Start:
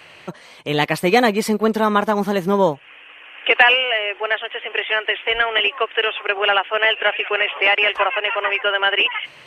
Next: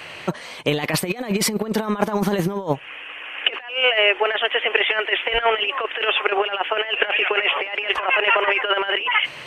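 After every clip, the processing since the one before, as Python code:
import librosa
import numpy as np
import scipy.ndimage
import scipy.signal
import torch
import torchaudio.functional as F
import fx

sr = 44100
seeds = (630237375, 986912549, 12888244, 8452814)

y = fx.over_compress(x, sr, threshold_db=-22.0, ratio=-0.5)
y = y * librosa.db_to_amplitude(2.5)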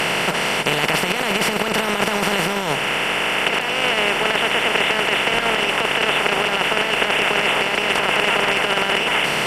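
y = fx.bin_compress(x, sr, power=0.2)
y = y * librosa.db_to_amplitude(-9.0)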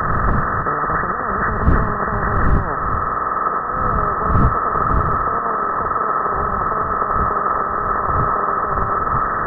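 y = fx.freq_compress(x, sr, knee_hz=1000.0, ratio=4.0)
y = fx.dmg_wind(y, sr, seeds[0], corner_hz=110.0, level_db=-20.0)
y = y * librosa.db_to_amplitude(-3.0)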